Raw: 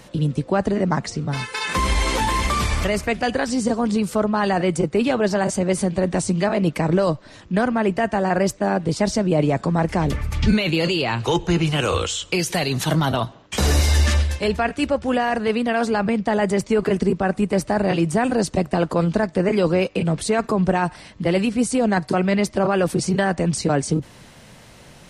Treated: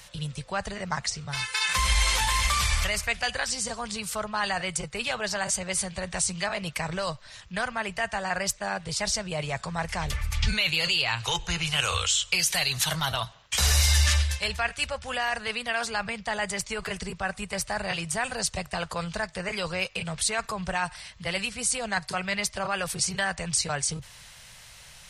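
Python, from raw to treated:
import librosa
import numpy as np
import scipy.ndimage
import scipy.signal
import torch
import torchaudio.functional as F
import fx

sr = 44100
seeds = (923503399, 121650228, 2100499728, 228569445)

y = fx.tone_stack(x, sr, knobs='10-0-10')
y = F.gain(torch.from_numpy(y), 3.5).numpy()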